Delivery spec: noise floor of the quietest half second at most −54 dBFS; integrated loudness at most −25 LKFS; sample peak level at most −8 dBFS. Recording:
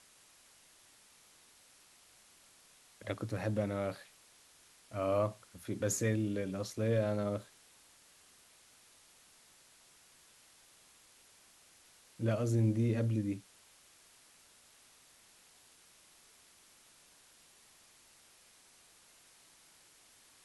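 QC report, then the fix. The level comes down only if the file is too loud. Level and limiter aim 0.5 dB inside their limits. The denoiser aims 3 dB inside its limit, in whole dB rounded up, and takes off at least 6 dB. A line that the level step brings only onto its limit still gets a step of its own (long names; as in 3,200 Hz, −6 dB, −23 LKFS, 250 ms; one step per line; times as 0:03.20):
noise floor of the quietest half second −63 dBFS: in spec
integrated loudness −35.0 LKFS: in spec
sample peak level −20.5 dBFS: in spec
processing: no processing needed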